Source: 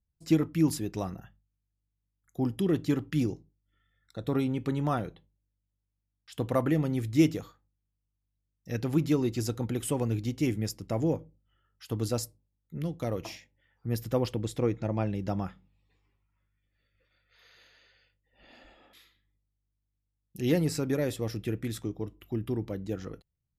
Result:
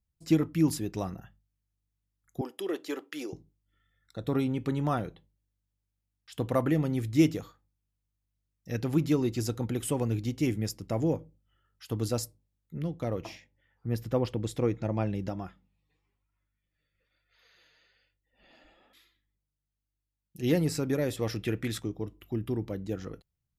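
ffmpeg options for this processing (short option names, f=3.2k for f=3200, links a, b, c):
-filter_complex "[0:a]asettb=1/sr,asplit=3[a][b][c];[a]atrim=end=2.414[d];[b]atrim=start=2.41:end=3.33,asetpts=PTS-STARTPTS,afade=t=in:d=0.004:c=qsin,afade=t=out:st=0.916:d=0.004:c=qsin,highpass=f=380:w=0.5412,highpass=f=380:w=1.3066[e];[c]atrim=start=3.326[f];[d][e]acrossfade=d=0.004:c1=hsin:c2=qsin[g];[g][f]acrossfade=d=0.004:c1=qsin:c2=hsin,asettb=1/sr,asplit=3[h][i][j];[h]atrim=end=12.794[k];[i]atrim=start=12.79:end=14.43,asetpts=PTS-STARTPTS,afade=t=in:d=0.004:c=qsin,afade=t=out:st=1.636:d=0.004:c=qsin,highshelf=f=4.8k:g=-9[l];[j]atrim=start=14.426[m];[k][l]acrossfade=d=0.004:c1=hsin:c2=qsin[n];[n][m]acrossfade=d=0.004:c1=qsin:c2=hsin,asplit=3[o][p][q];[o]afade=t=out:st=15.28:d=0.02[r];[p]flanger=delay=2.8:depth=3.7:regen=51:speed=1.1:shape=sinusoidal,afade=t=in:st=15.28:d=0.02,afade=t=out:st=20.42:d=0.02[s];[q]afade=t=in:st=20.42:d=0.02[t];[r][s][t]amix=inputs=3:normalize=0,asettb=1/sr,asplit=3[u][v][w];[u]atrim=end=21.174[x];[v]atrim=start=21.17:end=21.8,asetpts=PTS-STARTPTS,afade=t=in:d=0.004:c=qsin,afade=t=out:st=0.626:d=0.004:c=qsin,equalizer=f=2k:w=0.32:g=6.5[y];[w]atrim=start=21.796[z];[x][y]acrossfade=d=0.004:c1=hsin:c2=qsin[aa];[aa][z]acrossfade=d=0.004:c1=qsin:c2=hsin"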